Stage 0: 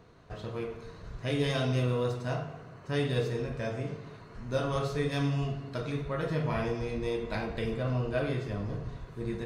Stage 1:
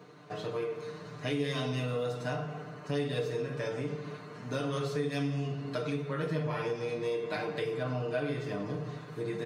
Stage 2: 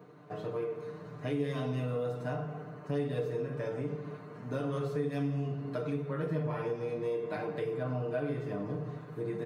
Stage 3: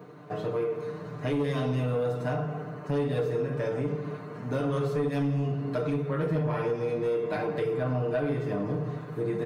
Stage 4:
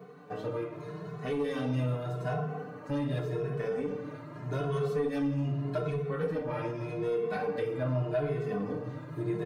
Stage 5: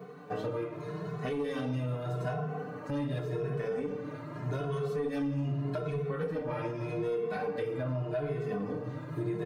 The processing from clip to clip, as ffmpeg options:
ffmpeg -i in.wav -af "highpass=frequency=150:width=0.5412,highpass=frequency=150:width=1.3066,aecho=1:1:6.7:0.93,acompressor=threshold=-35dB:ratio=2.5,volume=2.5dB" out.wav
ffmpeg -i in.wav -af "equalizer=frequency=5000:width_type=o:width=2.6:gain=-12.5" out.wav
ffmpeg -i in.wav -af "aeval=exprs='0.0841*sin(PI/2*1.41*val(0)/0.0841)':channel_layout=same" out.wav
ffmpeg -i in.wav -filter_complex "[0:a]asplit=2[link_01][link_02];[link_02]adelay=2.3,afreqshift=0.83[link_03];[link_01][link_03]amix=inputs=2:normalize=1" out.wav
ffmpeg -i in.wav -af "alimiter=level_in=4dB:limit=-24dB:level=0:latency=1:release=450,volume=-4dB,volume=3dB" out.wav

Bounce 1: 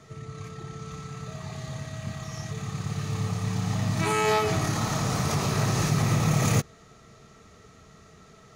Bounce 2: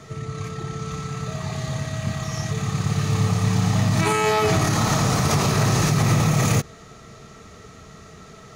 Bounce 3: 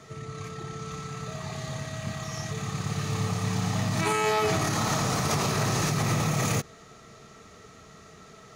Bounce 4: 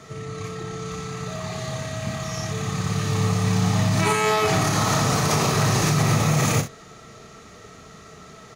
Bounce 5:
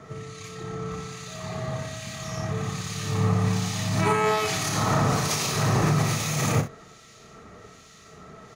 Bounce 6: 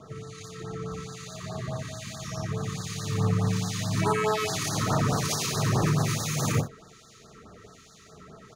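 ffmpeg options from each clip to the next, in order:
ffmpeg -i in.wav -af "alimiter=limit=-19dB:level=0:latency=1:release=59,volume=8.5dB" out.wav
ffmpeg -i in.wav -af "lowshelf=frequency=150:gain=-7,volume=-4.5dB" out.wav
ffmpeg -i in.wav -af "aecho=1:1:39|66:0.398|0.251,volume=4.5dB" out.wav
ffmpeg -i in.wav -filter_complex "[0:a]acrossover=split=2000[link_01][link_02];[link_01]aeval=exprs='val(0)*(1-0.7/2+0.7/2*cos(2*PI*1.2*n/s))':channel_layout=same[link_03];[link_02]aeval=exprs='val(0)*(1-0.7/2-0.7/2*cos(2*PI*1.2*n/s))':channel_layout=same[link_04];[link_03][link_04]amix=inputs=2:normalize=0" out.wav
ffmpeg -i in.wav -af "afftfilt=real='re*(1-between(b*sr/1024,630*pow(2700/630,0.5+0.5*sin(2*PI*4.7*pts/sr))/1.41,630*pow(2700/630,0.5+0.5*sin(2*PI*4.7*pts/sr))*1.41))':imag='im*(1-between(b*sr/1024,630*pow(2700/630,0.5+0.5*sin(2*PI*4.7*pts/sr))/1.41,630*pow(2700/630,0.5+0.5*sin(2*PI*4.7*pts/sr))*1.41))':win_size=1024:overlap=0.75,volume=-2dB" out.wav

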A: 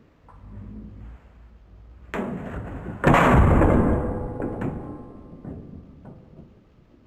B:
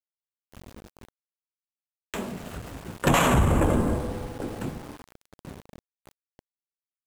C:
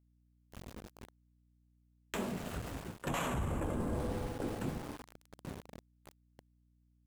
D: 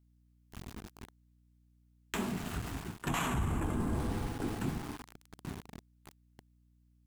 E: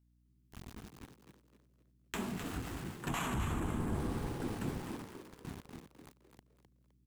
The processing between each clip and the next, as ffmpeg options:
ffmpeg -i in.wav -af "aexciter=amount=5.3:drive=3.6:freq=2900,aeval=exprs='val(0)*gte(abs(val(0)),0.02)':channel_layout=same,volume=-4.5dB" out.wav
ffmpeg -i in.wav -af "areverse,acompressor=threshold=-29dB:ratio=12,areverse,aeval=exprs='val(0)+0.000501*(sin(2*PI*60*n/s)+sin(2*PI*2*60*n/s)/2+sin(2*PI*3*60*n/s)/3+sin(2*PI*4*60*n/s)/4+sin(2*PI*5*60*n/s)/5)':channel_layout=same,volume=-3dB" out.wav
ffmpeg -i in.wav -af "equalizer=frequency=540:width_type=o:width=0.38:gain=-14.5,volume=3.5dB" out.wav
ffmpeg -i in.wav -filter_complex "[0:a]asplit=5[link_01][link_02][link_03][link_04][link_05];[link_02]adelay=257,afreqshift=74,volume=-7.5dB[link_06];[link_03]adelay=514,afreqshift=148,volume=-16.9dB[link_07];[link_04]adelay=771,afreqshift=222,volume=-26.2dB[link_08];[link_05]adelay=1028,afreqshift=296,volume=-35.6dB[link_09];[link_01][link_06][link_07][link_08][link_09]amix=inputs=5:normalize=0,volume=-3.5dB" out.wav

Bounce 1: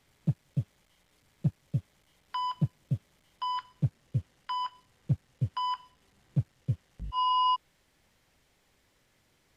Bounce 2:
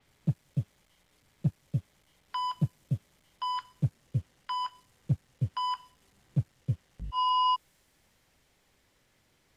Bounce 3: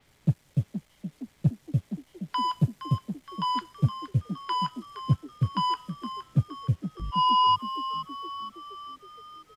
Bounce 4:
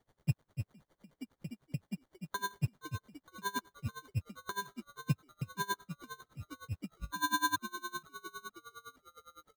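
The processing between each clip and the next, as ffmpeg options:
ffmpeg -i in.wav -af "adynamicequalizer=threshold=0.002:dfrequency=5600:dqfactor=0.7:tfrequency=5600:tqfactor=0.7:attack=5:release=100:ratio=0.375:range=3.5:mode=boostabove:tftype=highshelf" out.wav
ffmpeg -i in.wav -filter_complex "[0:a]asplit=7[link_01][link_02][link_03][link_04][link_05][link_06][link_07];[link_02]adelay=467,afreqshift=53,volume=-11dB[link_08];[link_03]adelay=934,afreqshift=106,volume=-16dB[link_09];[link_04]adelay=1401,afreqshift=159,volume=-21.1dB[link_10];[link_05]adelay=1868,afreqshift=212,volume=-26.1dB[link_11];[link_06]adelay=2335,afreqshift=265,volume=-31.1dB[link_12];[link_07]adelay=2802,afreqshift=318,volume=-36.2dB[link_13];[link_01][link_08][link_09][link_10][link_11][link_12][link_13]amix=inputs=7:normalize=0,volume=4.5dB" out.wav
ffmpeg -i in.wav -af "acrusher=samples=17:mix=1:aa=0.000001,aeval=exprs='val(0)*pow(10,-24*(0.5-0.5*cos(2*PI*9.8*n/s))/20)':channel_layout=same,volume=-5dB" out.wav

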